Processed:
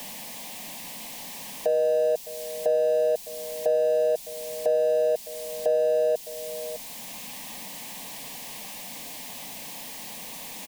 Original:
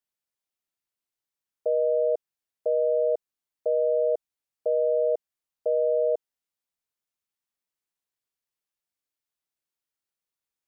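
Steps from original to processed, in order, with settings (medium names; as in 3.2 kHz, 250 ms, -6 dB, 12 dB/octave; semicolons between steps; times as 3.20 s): jump at every zero crossing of -45 dBFS; peaking EQ 570 Hz -6 dB 0.63 oct; in parallel at +0.5 dB: compression, threshold -40 dBFS, peak gain reduction 14 dB; on the sum: saturation -21.5 dBFS, distortion -19 dB; static phaser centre 370 Hz, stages 6; on a send: delay 608 ms -18 dB; on the sum: three bands compressed up and down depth 40%; trim +7 dB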